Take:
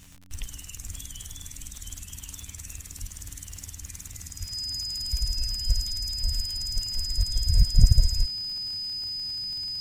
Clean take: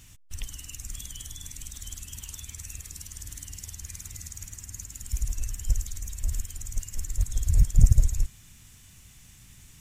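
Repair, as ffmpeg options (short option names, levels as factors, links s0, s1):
-filter_complex "[0:a]adeclick=t=4,bandreject=f=92.3:t=h:w=4,bandreject=f=184.6:t=h:w=4,bandreject=f=276.9:t=h:w=4,bandreject=f=5000:w=30,asplit=3[s0][s1][s2];[s0]afade=t=out:st=0.87:d=0.02[s3];[s1]highpass=f=140:w=0.5412,highpass=f=140:w=1.3066,afade=t=in:st=0.87:d=0.02,afade=t=out:st=0.99:d=0.02[s4];[s2]afade=t=in:st=0.99:d=0.02[s5];[s3][s4][s5]amix=inputs=3:normalize=0,asplit=3[s6][s7][s8];[s6]afade=t=out:st=3:d=0.02[s9];[s7]highpass=f=140:w=0.5412,highpass=f=140:w=1.3066,afade=t=in:st=3:d=0.02,afade=t=out:st=3.12:d=0.02[s10];[s8]afade=t=in:st=3.12:d=0.02[s11];[s9][s10][s11]amix=inputs=3:normalize=0,asplit=3[s12][s13][s14];[s12]afade=t=out:st=4.39:d=0.02[s15];[s13]highpass=f=140:w=0.5412,highpass=f=140:w=1.3066,afade=t=in:st=4.39:d=0.02,afade=t=out:st=4.51:d=0.02[s16];[s14]afade=t=in:st=4.51:d=0.02[s17];[s15][s16][s17]amix=inputs=3:normalize=0"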